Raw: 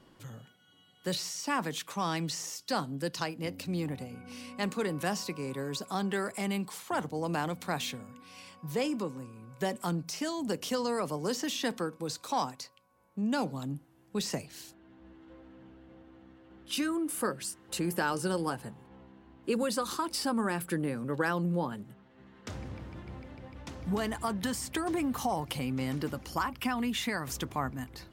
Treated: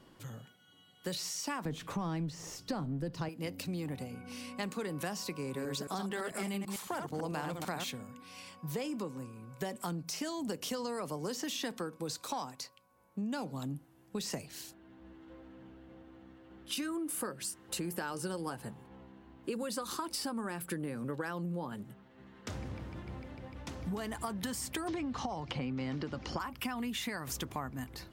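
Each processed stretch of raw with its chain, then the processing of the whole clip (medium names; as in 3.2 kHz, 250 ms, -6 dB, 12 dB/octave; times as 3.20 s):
1.65–3.29 s: companding laws mixed up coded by mu + tilt EQ -3.5 dB/octave
5.43–7.90 s: chunks repeated in reverse 111 ms, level -5 dB + tape noise reduction on one side only decoder only
24.88–26.40 s: low-pass 5.6 kHz 24 dB/octave + three bands compressed up and down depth 100%
whole clip: treble shelf 10 kHz +3.5 dB; compression, threshold -34 dBFS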